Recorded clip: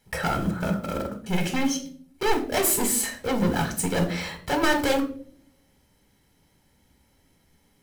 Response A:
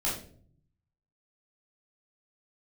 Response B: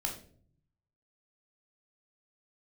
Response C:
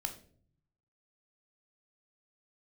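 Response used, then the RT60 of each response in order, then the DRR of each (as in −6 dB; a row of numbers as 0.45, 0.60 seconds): C; 0.50, 0.50, 0.50 seconds; −7.5, 0.5, 5.0 decibels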